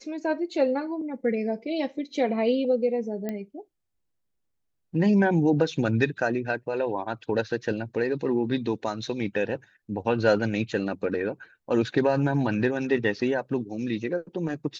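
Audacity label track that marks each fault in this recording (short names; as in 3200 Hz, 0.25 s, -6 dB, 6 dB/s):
3.290000	3.290000	pop -18 dBFS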